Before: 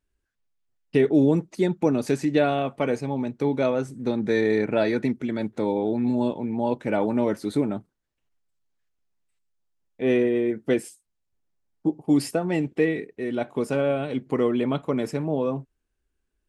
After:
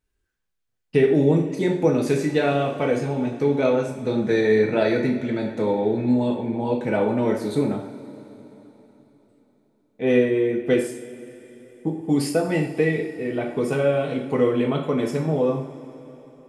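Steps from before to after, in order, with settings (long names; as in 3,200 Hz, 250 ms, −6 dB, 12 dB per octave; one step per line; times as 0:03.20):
0:13.09–0:13.50: flat-topped bell 6,100 Hz −8.5 dB
coupled-rooms reverb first 0.51 s, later 3.9 s, from −18 dB, DRR 0 dB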